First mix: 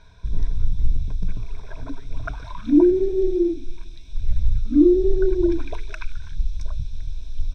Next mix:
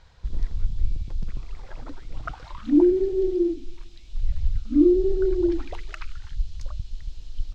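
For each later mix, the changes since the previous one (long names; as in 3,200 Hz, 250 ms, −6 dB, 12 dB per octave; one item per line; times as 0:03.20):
first sound: remove EQ curve with evenly spaced ripples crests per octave 1.6, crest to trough 14 dB
master: add parametric band 150 Hz −4 dB 2.8 octaves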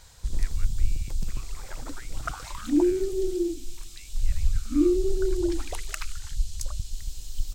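speech +9.5 dB
second sound −5.0 dB
master: remove high-frequency loss of the air 230 metres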